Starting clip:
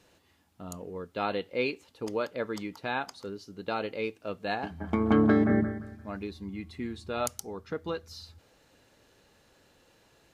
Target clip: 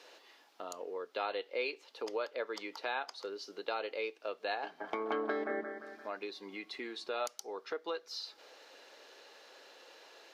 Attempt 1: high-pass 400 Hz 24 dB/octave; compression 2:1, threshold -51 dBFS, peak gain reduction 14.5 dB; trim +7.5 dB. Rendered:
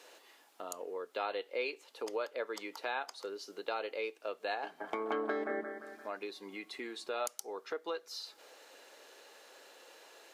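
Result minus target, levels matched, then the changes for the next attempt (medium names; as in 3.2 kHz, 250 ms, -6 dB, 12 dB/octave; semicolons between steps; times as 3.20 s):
8 kHz band +4.0 dB
add after compression: resonant high shelf 6.6 kHz -7.5 dB, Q 1.5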